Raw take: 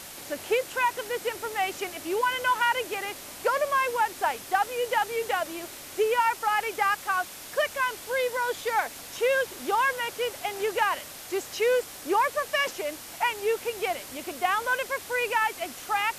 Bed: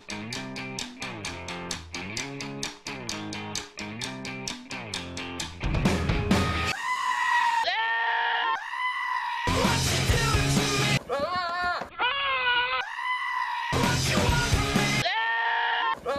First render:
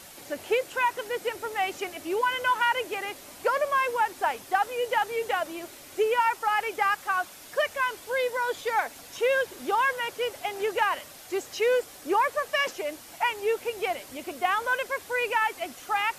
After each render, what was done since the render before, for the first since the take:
broadband denoise 6 dB, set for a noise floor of −43 dBFS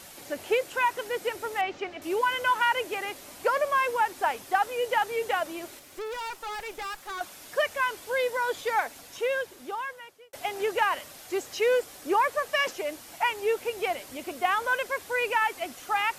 0:01.61–0:02.02: high-frequency loss of the air 170 metres
0:05.79–0:07.21: tube saturation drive 33 dB, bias 0.75
0:08.73–0:10.33: fade out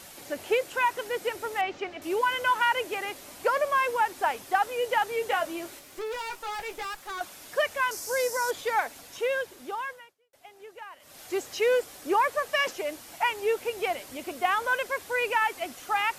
0:05.30–0:06.85: double-tracking delay 18 ms −7.5 dB
0:07.91–0:08.51: high shelf with overshoot 4,400 Hz +8.5 dB, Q 3
0:09.92–0:11.22: duck −18.5 dB, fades 0.23 s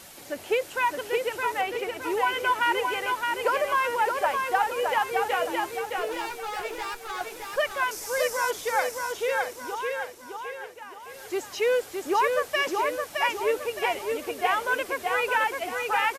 repeating echo 616 ms, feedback 42%, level −4 dB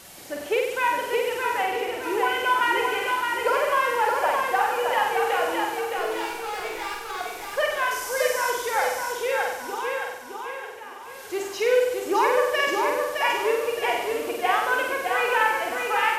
flutter between parallel walls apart 8.2 metres, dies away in 0.83 s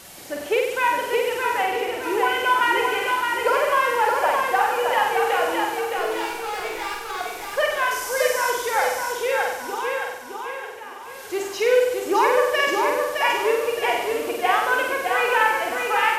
level +2.5 dB

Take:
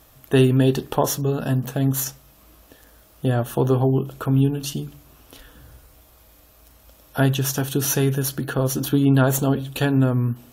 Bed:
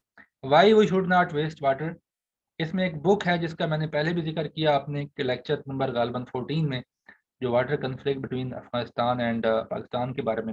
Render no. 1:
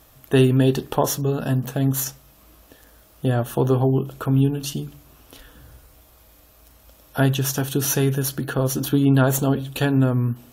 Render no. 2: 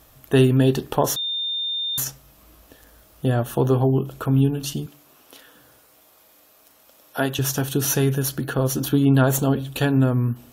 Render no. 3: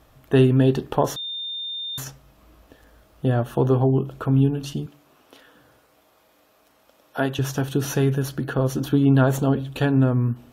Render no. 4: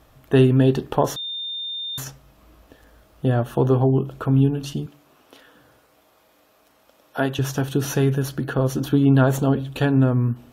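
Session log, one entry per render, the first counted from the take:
no processing that can be heard
0:01.16–0:01.98: beep over 3,620 Hz −23 dBFS; 0:04.86–0:07.39: Bessel high-pass filter 310 Hz
low-pass filter 2,500 Hz 6 dB per octave
level +1 dB

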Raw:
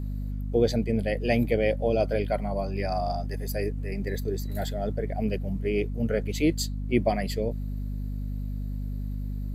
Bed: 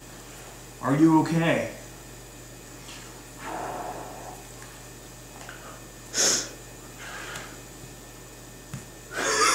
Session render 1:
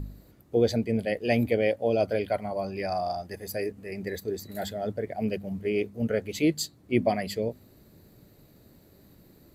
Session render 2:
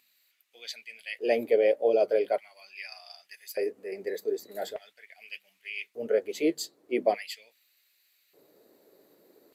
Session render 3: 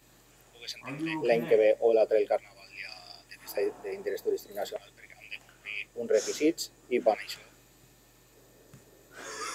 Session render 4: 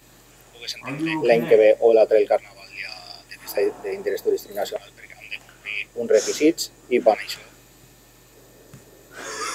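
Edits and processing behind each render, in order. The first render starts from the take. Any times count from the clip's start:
hum removal 50 Hz, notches 5
auto-filter high-pass square 0.42 Hz 430–2,500 Hz; flanger 1.6 Hz, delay 2.5 ms, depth 5.2 ms, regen −60%
mix in bed −16.5 dB
level +8.5 dB

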